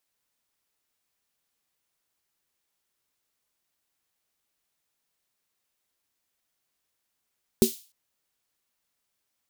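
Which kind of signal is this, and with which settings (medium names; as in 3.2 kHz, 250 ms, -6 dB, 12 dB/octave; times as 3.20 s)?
snare drum length 0.30 s, tones 230 Hz, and 380 Hz, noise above 3.2 kHz, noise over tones -11 dB, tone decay 0.13 s, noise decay 0.39 s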